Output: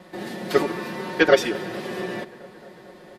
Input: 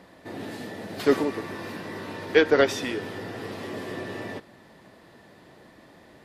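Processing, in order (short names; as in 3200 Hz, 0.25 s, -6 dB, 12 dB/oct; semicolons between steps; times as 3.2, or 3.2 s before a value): notches 50/100/150 Hz; comb 5.5 ms, depth 96%; time stretch by phase-locked vocoder 0.51×; vibrato 1.2 Hz 11 cents; tape echo 0.223 s, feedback 83%, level -19.5 dB, low-pass 2700 Hz; gain +3 dB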